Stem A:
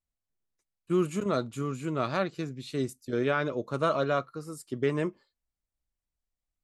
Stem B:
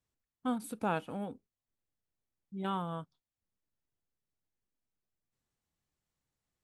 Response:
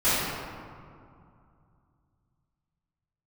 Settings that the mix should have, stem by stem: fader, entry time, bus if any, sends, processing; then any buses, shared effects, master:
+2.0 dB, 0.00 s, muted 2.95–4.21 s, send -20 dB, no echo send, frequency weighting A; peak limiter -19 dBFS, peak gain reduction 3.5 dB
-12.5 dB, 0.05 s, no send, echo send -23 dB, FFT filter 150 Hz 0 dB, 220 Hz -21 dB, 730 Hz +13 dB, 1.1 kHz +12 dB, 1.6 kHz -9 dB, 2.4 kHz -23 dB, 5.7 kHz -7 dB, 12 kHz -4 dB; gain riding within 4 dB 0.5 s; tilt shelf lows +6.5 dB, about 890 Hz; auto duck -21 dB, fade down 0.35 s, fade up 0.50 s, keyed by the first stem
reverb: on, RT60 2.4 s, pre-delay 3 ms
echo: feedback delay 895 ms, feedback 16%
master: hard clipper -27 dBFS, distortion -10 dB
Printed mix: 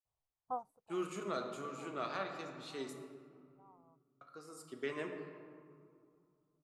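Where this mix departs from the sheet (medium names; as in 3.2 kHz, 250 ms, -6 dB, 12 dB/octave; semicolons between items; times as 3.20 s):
stem A +2.0 dB -> -8.5 dB; master: missing hard clipper -27 dBFS, distortion -10 dB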